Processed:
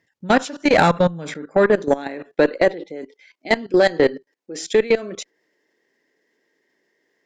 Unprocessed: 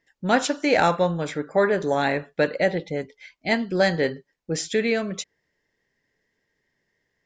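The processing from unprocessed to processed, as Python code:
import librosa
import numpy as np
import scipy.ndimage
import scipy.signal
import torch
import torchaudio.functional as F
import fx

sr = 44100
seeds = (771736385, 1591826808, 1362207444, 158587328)

y = fx.filter_sweep_highpass(x, sr, from_hz=100.0, to_hz=320.0, start_s=0.05, end_s=2.3, q=2.1)
y = fx.level_steps(y, sr, step_db=19)
y = fx.cheby_harmonics(y, sr, harmonics=(4, 5), levels_db=(-23, -25), full_scale_db=-6.0)
y = y * 10.0 ** (5.0 / 20.0)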